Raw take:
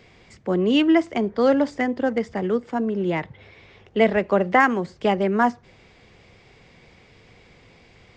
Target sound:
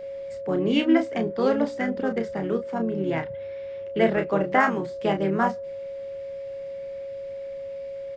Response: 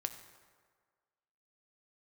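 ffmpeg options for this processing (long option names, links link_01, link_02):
-filter_complex "[0:a]asplit=2[link_01][link_02];[link_02]asetrate=35002,aresample=44100,atempo=1.25992,volume=-7dB[link_03];[link_01][link_03]amix=inputs=2:normalize=0,aeval=exprs='val(0)+0.0316*sin(2*PI*550*n/s)':channel_layout=same,asplit=2[link_04][link_05];[link_05]adelay=31,volume=-7dB[link_06];[link_04][link_06]amix=inputs=2:normalize=0,volume=-5dB"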